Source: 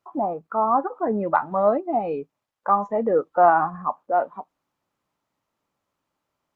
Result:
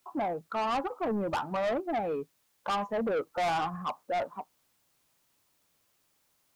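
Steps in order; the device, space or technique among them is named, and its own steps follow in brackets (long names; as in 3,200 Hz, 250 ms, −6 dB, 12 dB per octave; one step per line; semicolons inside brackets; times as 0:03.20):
open-reel tape (soft clipping −23.5 dBFS, distortion −6 dB; parametric band 100 Hz +4.5 dB 1.03 octaves; white noise bed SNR 39 dB)
level −3 dB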